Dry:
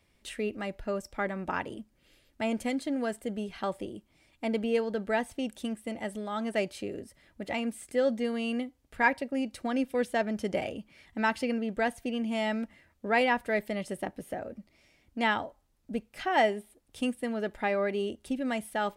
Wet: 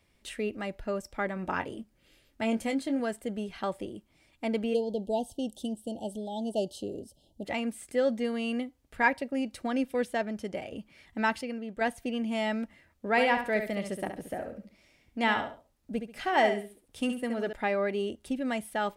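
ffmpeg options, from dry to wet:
-filter_complex "[0:a]asettb=1/sr,asplit=3[a][b][c];[a]atrim=end=1.344[d];[b]atrim=start=1.34:end=3,asetpts=PTS-STARTPTS,afade=t=in:d=0.004:c=qsin,afade=t=out:st=1.656:d=0.004:c=qsin,asplit=2[e][f];[f]adelay=22,volume=-9dB[g];[e][g]amix=inputs=2:normalize=0,atrim=end_sample=73206[h];[c]atrim=start=2.996[i];[d][h]acrossfade=d=0.004:c1=hsin:c2=qsin[j];[j][i]acrossfade=d=0.004:c1=qsin:c2=hsin,asplit=3[k][l][m];[k]afade=t=out:st=4.73:d=0.02[n];[l]asuperstop=centerf=1600:order=20:qfactor=0.79,afade=t=in:st=4.73:d=0.02,afade=t=out:st=7.44:d=0.02[o];[m]afade=t=in:st=7.44:d=0.02[p];[n][o][p]amix=inputs=3:normalize=0,asettb=1/sr,asplit=3[q][r][s];[q]atrim=end=13.104[t];[r]atrim=start=13.1:end=17.53,asetpts=PTS-STARTPTS,afade=t=in:d=0.004:c=qsin,afade=t=out:st=4.426:d=0.004:c=qsin,aecho=1:1:69|138|207:0.422|0.114|0.0307,atrim=end_sample=195363[u];[s]atrim=start=17.526[v];[t][u]acrossfade=d=0.004:c1=hsin:c2=qsin[w];[w][v]acrossfade=d=0.004:c1=qsin:c2=hsin,asplit=4[x][y][z][aa];[x]atrim=end=10.72,asetpts=PTS-STARTPTS,afade=t=out:st=9.9:d=0.82:silence=0.421697[ab];[y]atrim=start=10.72:end=11.412,asetpts=PTS-STARTPTS,afade=t=in:d=0.004:c=hsin:silence=0.421697[ac];[z]atrim=start=11.408:end=11.812,asetpts=PTS-STARTPTS,volume=-6dB[ad];[aa]atrim=start=11.808[ae];[ab][ac]concat=n=2:v=0:a=1[af];[af][ad]acrossfade=d=0.004:c1=hsin:c2=hsin[ag];[ag][ae]acrossfade=d=0.004:c1=hsin:c2=hsin"

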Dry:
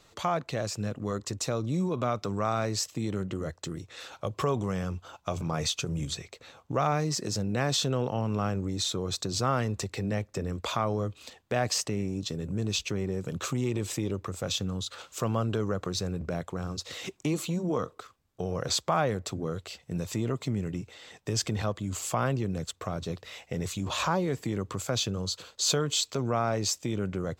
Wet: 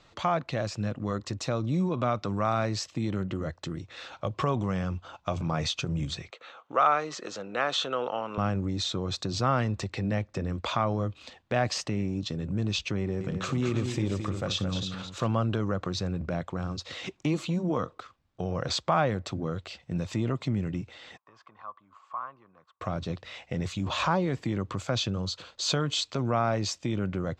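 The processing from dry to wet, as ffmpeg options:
-filter_complex "[0:a]asettb=1/sr,asplit=3[a][b][c];[a]atrim=end=6.304[d];[b]atrim=start=6.3:end=8.38,asetpts=PTS-STARTPTS,afade=t=in:d=0.004:c=qsin,afade=t=out:st=2.076:d=0.004:c=qsin,highpass=450,equalizer=f=470:t=q:w=4:g=4,equalizer=f=1.3k:t=q:w=4:g=9,equalizer=f=3.1k:t=q:w=4:g=4,equalizer=f=5.1k:t=q:w=4:g=-9,lowpass=f=7.7k:w=0.5412,lowpass=f=7.7k:w=1.3066[e];[c]atrim=start=8.376[f];[d][e]acrossfade=d=0.004:c1=hsin:c2=qsin[g];[g][f]acrossfade=d=0.004:c1=qsin:c2=hsin,asettb=1/sr,asplit=3[h][i][j];[h]atrim=end=12.994[k];[i]atrim=start=12.99:end=15.27,asetpts=PTS-STARTPTS,afade=t=in:d=0.004:c=qsin,afade=t=out:st=2.276:d=0.004:c=qsin,aecho=1:1:61|217|329:0.15|0.422|0.224,atrim=end_sample=100548[l];[j]atrim=start=15.266[m];[k][l]acrossfade=d=0.004:c1=hsin:c2=qsin[n];[n][m]acrossfade=d=0.004:c1=qsin:c2=hsin,asplit=3[o][p][q];[o]afade=t=out:st=21.16:d=0.02[r];[p]bandpass=f=1.1k:t=q:w=8.1,afade=t=in:st=21.16:d=0.02,afade=t=out:st=22.8:d=0.02[s];[q]afade=t=in:st=22.8:d=0.02[t];[r][s][t]amix=inputs=3:normalize=0,lowpass=4.4k,equalizer=f=430:t=o:w=0.28:g=-6.5,volume=2dB"

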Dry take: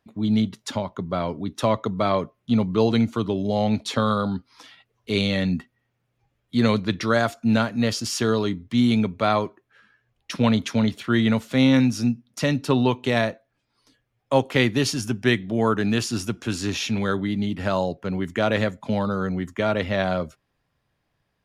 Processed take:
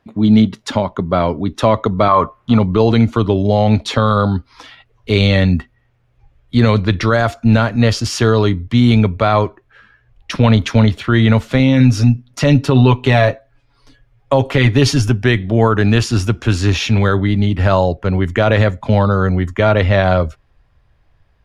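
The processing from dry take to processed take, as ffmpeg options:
-filter_complex "[0:a]asettb=1/sr,asplit=3[a][b][c];[a]atrim=end=2.084[d];[b]atrim=start=2.08:end=2.59,asetpts=PTS-STARTPTS,afade=t=in:d=0.004:c=qsin,afade=t=out:st=0.506:d=0.004:c=qsin,equalizer=f=1.1k:t=o:w=1:g=14.5[e];[c]atrim=start=2.586[f];[d][e]acrossfade=d=0.004:c1=hsin:c2=qsin[g];[g][f]acrossfade=d=0.004:c1=qsin:c2=hsin,asettb=1/sr,asplit=3[h][i][j];[h]atrim=end=11.594[k];[i]atrim=start=11.59:end=15.09,asetpts=PTS-STARTPTS,afade=t=in:d=0.004:c=qsin,afade=t=out:st=3.496:d=0.004:c=qsin,aecho=1:1:7.2:0.66,atrim=end_sample=154350[l];[j]atrim=start=15.086[m];[k][l]acrossfade=d=0.004:c1=hsin:c2=qsin[n];[n][m]acrossfade=d=0.004:c1=qsin:c2=hsin,lowpass=f=2.9k:p=1,asubboost=boost=8:cutoff=67,alimiter=level_in=12.5dB:limit=-1dB:release=50:level=0:latency=1,volume=-1dB"

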